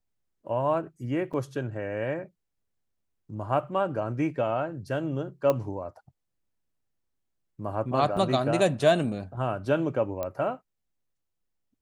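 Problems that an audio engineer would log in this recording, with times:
1.33–1.34 gap 6.4 ms
5.5 pop -13 dBFS
8.17 gap 3.3 ms
10.23 pop -18 dBFS

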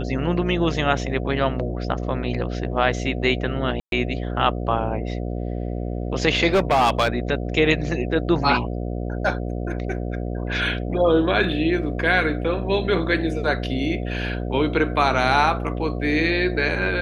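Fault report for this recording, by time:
buzz 60 Hz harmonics 12 -27 dBFS
3.8–3.92 gap 0.122 s
6.53–7.18 clipped -13.5 dBFS

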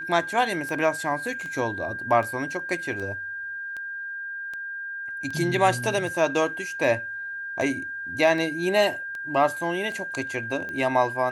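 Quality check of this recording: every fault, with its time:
tick 78 rpm -23 dBFS
tone 1600 Hz -31 dBFS

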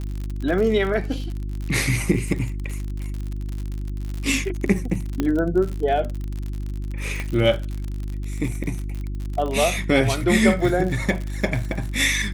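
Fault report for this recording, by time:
crackle 58/s -27 dBFS
hum 50 Hz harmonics 7 -28 dBFS
5.2 pop -10 dBFS
7.2 pop -15 dBFS

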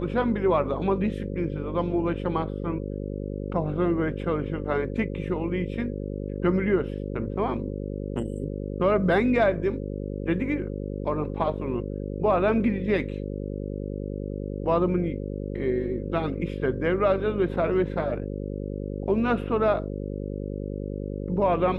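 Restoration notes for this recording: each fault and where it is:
buzz 50 Hz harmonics 11 -32 dBFS

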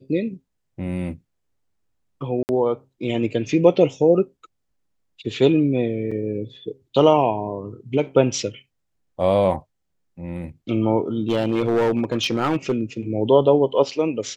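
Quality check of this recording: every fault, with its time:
2.43–2.49 gap 59 ms
6.11–6.12 gap 5 ms
11.29–12.81 clipped -15 dBFS

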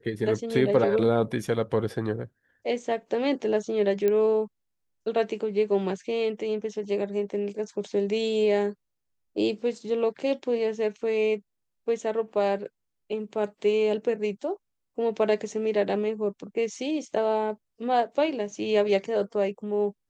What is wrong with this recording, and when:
4.08 pop -14 dBFS

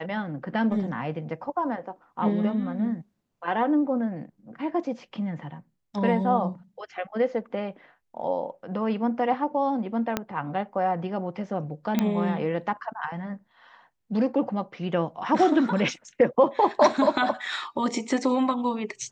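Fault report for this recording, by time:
10.17 pop -10 dBFS
11.99 pop -10 dBFS

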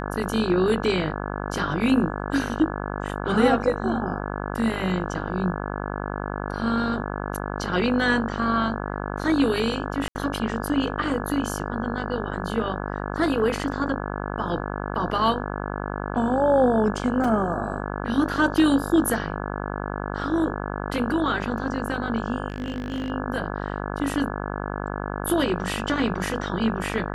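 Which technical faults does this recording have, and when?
buzz 50 Hz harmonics 34 -30 dBFS
10.08–10.15 gap 70 ms
17.24 gap 4.5 ms
22.48–23.1 clipped -24.5 dBFS

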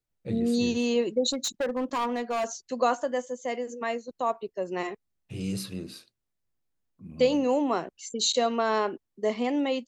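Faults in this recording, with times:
1.3–2.45 clipped -24.5 dBFS

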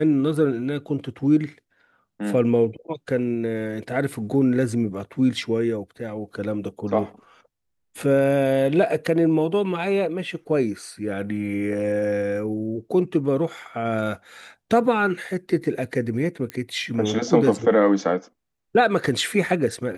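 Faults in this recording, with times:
16.5 pop -16 dBFS

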